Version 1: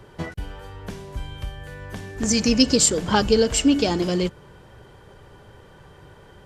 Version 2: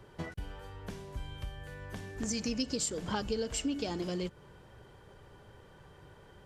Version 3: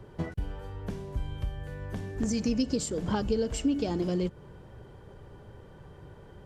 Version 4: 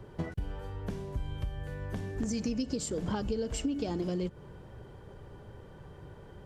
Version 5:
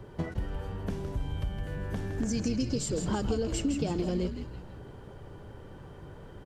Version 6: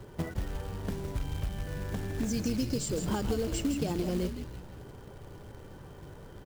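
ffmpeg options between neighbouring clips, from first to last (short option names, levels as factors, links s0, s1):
-af "acompressor=threshold=0.0501:ratio=2.5,volume=0.398"
-af "tiltshelf=f=820:g=5,volume=1.41"
-af "acompressor=threshold=0.0316:ratio=3"
-filter_complex "[0:a]asplit=6[s0][s1][s2][s3][s4][s5];[s1]adelay=163,afreqshift=-120,volume=0.447[s6];[s2]adelay=326,afreqshift=-240,volume=0.188[s7];[s3]adelay=489,afreqshift=-360,volume=0.0785[s8];[s4]adelay=652,afreqshift=-480,volume=0.0331[s9];[s5]adelay=815,afreqshift=-600,volume=0.014[s10];[s0][s6][s7][s8][s9][s10]amix=inputs=6:normalize=0,volume=1.26"
-af "acrusher=bits=4:mode=log:mix=0:aa=0.000001,volume=0.891"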